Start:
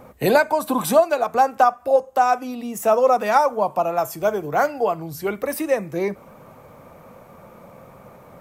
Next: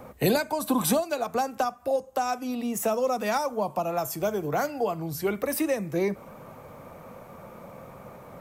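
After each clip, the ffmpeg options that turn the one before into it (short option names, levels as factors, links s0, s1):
-filter_complex "[0:a]acrossover=split=300|3000[s0][s1][s2];[s1]acompressor=threshold=0.0501:ratio=6[s3];[s0][s3][s2]amix=inputs=3:normalize=0"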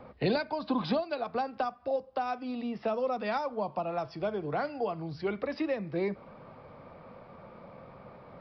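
-af "aresample=11025,aresample=44100,volume=0.562"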